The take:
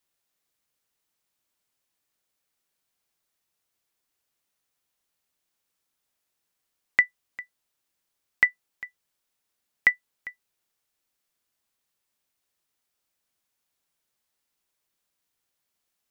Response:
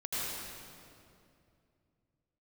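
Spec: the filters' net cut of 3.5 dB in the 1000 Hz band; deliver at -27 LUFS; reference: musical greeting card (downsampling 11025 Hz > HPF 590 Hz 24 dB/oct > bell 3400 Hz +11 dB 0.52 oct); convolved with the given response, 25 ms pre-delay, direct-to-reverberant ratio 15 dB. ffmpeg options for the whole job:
-filter_complex "[0:a]equalizer=f=1k:t=o:g=-5,asplit=2[a][b];[1:a]atrim=start_sample=2205,adelay=25[c];[b][c]afir=irnorm=-1:irlink=0,volume=-20.5dB[d];[a][d]amix=inputs=2:normalize=0,aresample=11025,aresample=44100,highpass=f=590:w=0.5412,highpass=f=590:w=1.3066,equalizer=f=3.4k:t=o:w=0.52:g=11,volume=-1.5dB"

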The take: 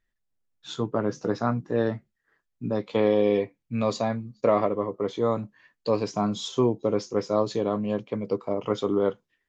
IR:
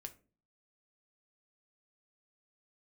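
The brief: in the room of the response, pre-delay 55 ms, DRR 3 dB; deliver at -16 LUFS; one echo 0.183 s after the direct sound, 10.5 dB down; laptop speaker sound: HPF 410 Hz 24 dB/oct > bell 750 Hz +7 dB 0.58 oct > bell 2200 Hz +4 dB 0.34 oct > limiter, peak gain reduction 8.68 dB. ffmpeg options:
-filter_complex "[0:a]aecho=1:1:183:0.299,asplit=2[a][b];[1:a]atrim=start_sample=2205,adelay=55[c];[b][c]afir=irnorm=-1:irlink=0,volume=2dB[d];[a][d]amix=inputs=2:normalize=0,highpass=f=410:w=0.5412,highpass=f=410:w=1.3066,equalizer=f=750:t=o:w=0.58:g=7,equalizer=f=2.2k:t=o:w=0.34:g=4,volume=10.5dB,alimiter=limit=-4dB:level=0:latency=1"

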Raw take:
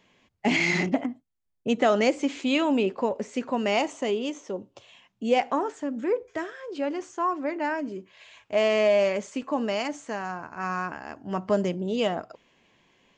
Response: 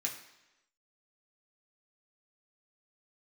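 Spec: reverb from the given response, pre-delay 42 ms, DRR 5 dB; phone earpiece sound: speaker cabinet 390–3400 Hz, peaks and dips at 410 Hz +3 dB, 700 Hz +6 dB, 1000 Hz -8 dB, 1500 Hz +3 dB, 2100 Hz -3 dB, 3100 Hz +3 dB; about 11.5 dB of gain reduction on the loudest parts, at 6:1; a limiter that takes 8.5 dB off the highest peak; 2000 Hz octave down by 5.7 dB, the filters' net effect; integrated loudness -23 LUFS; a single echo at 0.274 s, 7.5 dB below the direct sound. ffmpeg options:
-filter_complex "[0:a]equalizer=f=2k:t=o:g=-6,acompressor=threshold=-30dB:ratio=6,alimiter=level_in=4.5dB:limit=-24dB:level=0:latency=1,volume=-4.5dB,aecho=1:1:274:0.422,asplit=2[a][b];[1:a]atrim=start_sample=2205,adelay=42[c];[b][c]afir=irnorm=-1:irlink=0,volume=-7dB[d];[a][d]amix=inputs=2:normalize=0,highpass=390,equalizer=f=410:t=q:w=4:g=3,equalizer=f=700:t=q:w=4:g=6,equalizer=f=1k:t=q:w=4:g=-8,equalizer=f=1.5k:t=q:w=4:g=3,equalizer=f=2.1k:t=q:w=4:g=-3,equalizer=f=3.1k:t=q:w=4:g=3,lowpass=f=3.4k:w=0.5412,lowpass=f=3.4k:w=1.3066,volume=15dB"

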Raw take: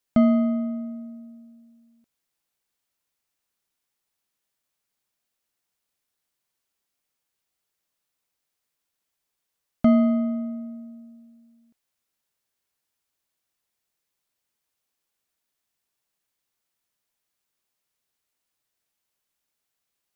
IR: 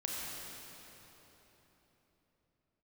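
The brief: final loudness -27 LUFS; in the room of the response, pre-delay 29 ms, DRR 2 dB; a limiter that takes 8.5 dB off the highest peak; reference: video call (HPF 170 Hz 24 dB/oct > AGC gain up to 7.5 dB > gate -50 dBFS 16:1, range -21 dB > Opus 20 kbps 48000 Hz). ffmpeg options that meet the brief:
-filter_complex "[0:a]alimiter=limit=-16dB:level=0:latency=1,asplit=2[a][b];[1:a]atrim=start_sample=2205,adelay=29[c];[b][c]afir=irnorm=-1:irlink=0,volume=-5dB[d];[a][d]amix=inputs=2:normalize=0,highpass=f=170:w=0.5412,highpass=f=170:w=1.3066,dynaudnorm=m=7.5dB,agate=range=-21dB:threshold=-50dB:ratio=16,volume=-4dB" -ar 48000 -c:a libopus -b:a 20k

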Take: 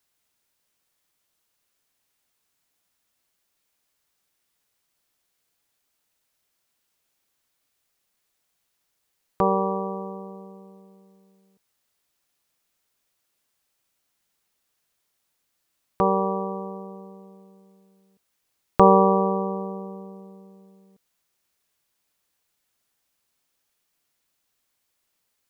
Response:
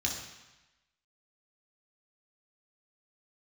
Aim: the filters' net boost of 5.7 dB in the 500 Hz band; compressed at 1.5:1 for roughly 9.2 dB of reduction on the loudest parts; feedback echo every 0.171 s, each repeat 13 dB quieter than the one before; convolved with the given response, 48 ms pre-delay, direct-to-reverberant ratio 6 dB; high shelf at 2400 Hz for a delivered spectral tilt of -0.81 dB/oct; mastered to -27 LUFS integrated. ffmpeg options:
-filter_complex "[0:a]equalizer=f=500:t=o:g=6.5,highshelf=f=2.4k:g=7,acompressor=threshold=-31dB:ratio=1.5,aecho=1:1:171|342|513:0.224|0.0493|0.0108,asplit=2[a][b];[1:a]atrim=start_sample=2205,adelay=48[c];[b][c]afir=irnorm=-1:irlink=0,volume=-11dB[d];[a][d]amix=inputs=2:normalize=0,volume=-2dB"

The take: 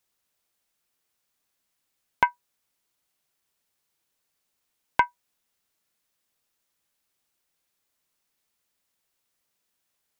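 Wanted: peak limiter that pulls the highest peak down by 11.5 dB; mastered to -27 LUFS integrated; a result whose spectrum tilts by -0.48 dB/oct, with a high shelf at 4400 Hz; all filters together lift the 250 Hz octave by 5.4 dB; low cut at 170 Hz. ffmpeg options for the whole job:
-af "highpass=170,equalizer=f=250:t=o:g=8,highshelf=f=4.4k:g=-7,volume=8.5dB,alimiter=limit=-7.5dB:level=0:latency=1"

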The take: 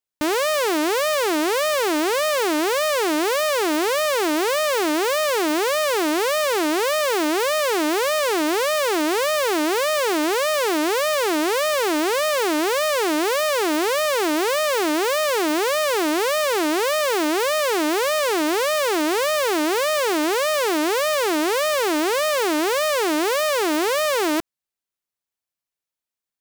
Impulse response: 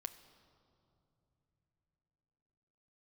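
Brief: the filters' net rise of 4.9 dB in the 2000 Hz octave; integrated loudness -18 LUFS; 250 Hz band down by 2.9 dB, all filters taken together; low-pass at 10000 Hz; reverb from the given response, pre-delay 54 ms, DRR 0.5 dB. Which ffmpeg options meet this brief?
-filter_complex "[0:a]lowpass=10k,equalizer=f=250:t=o:g=-4.5,equalizer=f=2k:t=o:g=6,asplit=2[a][b];[1:a]atrim=start_sample=2205,adelay=54[c];[b][c]afir=irnorm=-1:irlink=0,volume=3dB[d];[a][d]amix=inputs=2:normalize=0,volume=-1.5dB"

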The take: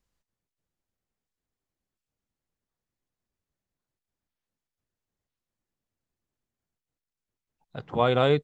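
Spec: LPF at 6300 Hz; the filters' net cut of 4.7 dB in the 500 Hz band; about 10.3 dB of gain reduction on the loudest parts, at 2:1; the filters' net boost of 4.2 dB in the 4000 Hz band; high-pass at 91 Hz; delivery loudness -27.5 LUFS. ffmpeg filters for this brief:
-af "highpass=91,lowpass=6.3k,equalizer=f=500:t=o:g=-5.5,equalizer=f=4k:t=o:g=5.5,acompressor=threshold=-38dB:ratio=2,volume=8.5dB"

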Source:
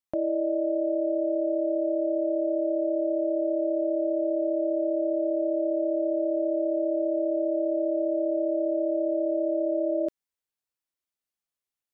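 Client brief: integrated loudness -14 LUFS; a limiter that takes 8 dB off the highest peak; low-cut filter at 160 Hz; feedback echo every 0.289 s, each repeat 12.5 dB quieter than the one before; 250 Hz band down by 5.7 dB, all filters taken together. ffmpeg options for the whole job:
-af "highpass=160,equalizer=f=250:t=o:g=-9,alimiter=level_in=4.5dB:limit=-24dB:level=0:latency=1,volume=-4.5dB,aecho=1:1:289|578|867:0.237|0.0569|0.0137,volume=21.5dB"

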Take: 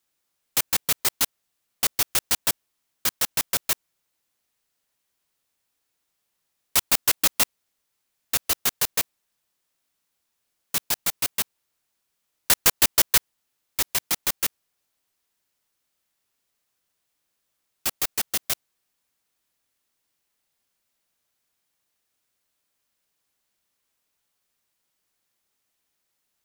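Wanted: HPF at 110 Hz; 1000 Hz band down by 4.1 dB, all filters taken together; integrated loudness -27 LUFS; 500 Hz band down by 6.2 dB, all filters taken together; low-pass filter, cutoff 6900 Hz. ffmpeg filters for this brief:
-af "highpass=110,lowpass=6.9k,equalizer=f=500:t=o:g=-7,equalizer=f=1k:t=o:g=-3.5,volume=2dB"

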